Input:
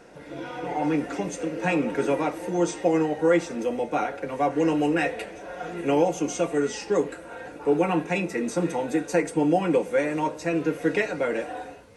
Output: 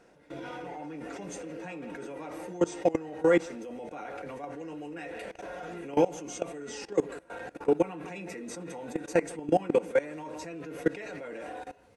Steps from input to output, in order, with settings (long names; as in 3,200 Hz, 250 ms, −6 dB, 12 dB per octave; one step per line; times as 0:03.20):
far-end echo of a speakerphone 160 ms, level −14 dB
output level in coarse steps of 20 dB